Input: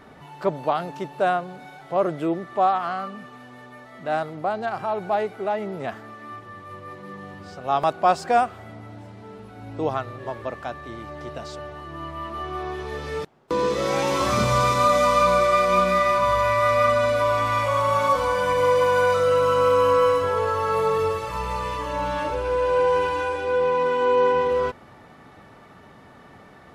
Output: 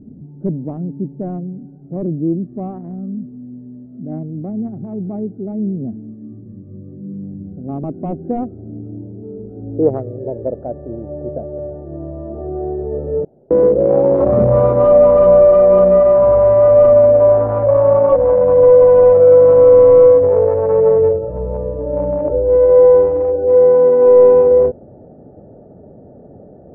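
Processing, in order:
adaptive Wiener filter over 41 samples
sine wavefolder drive 6 dB, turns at −7.5 dBFS
low-pass filter sweep 240 Hz → 590 Hz, 0:07.42–0:10.93
level −1 dB

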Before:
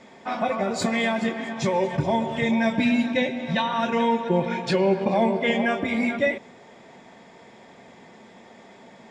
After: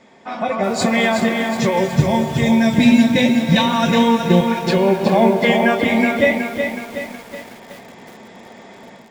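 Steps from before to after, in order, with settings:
0:01.77–0:04.41: bass and treble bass +10 dB, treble +12 dB
automatic gain control gain up to 9 dB
feedback echo at a low word length 370 ms, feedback 55%, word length 6 bits, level −6 dB
level −1 dB

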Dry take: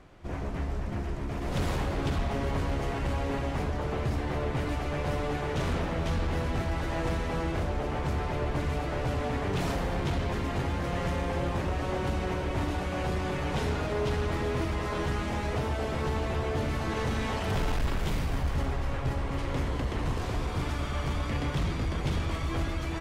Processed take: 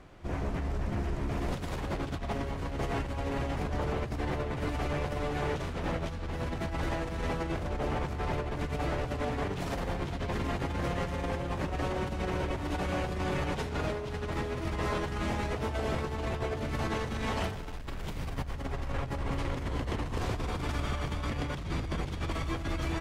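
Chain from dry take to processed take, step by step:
compressor whose output falls as the input rises −31 dBFS, ratio −0.5
level −1 dB

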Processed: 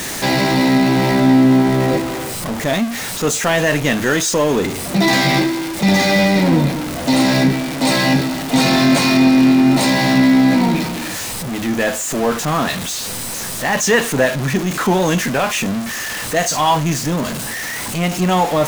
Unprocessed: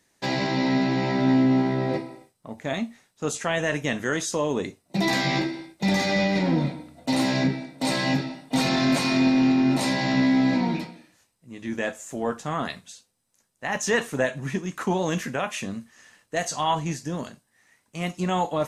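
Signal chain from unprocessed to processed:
converter with a step at zero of −26 dBFS
level +7 dB

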